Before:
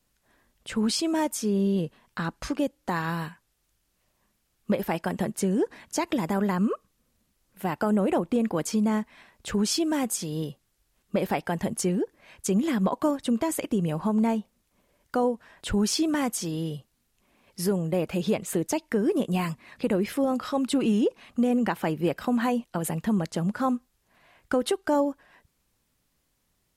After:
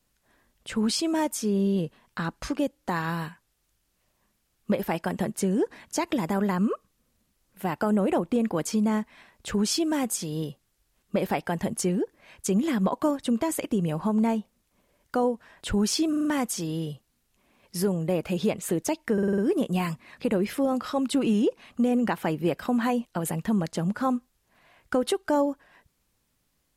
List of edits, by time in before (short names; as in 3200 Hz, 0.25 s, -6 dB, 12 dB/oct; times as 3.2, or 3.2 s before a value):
16.09 stutter 0.04 s, 5 plays
18.97 stutter 0.05 s, 6 plays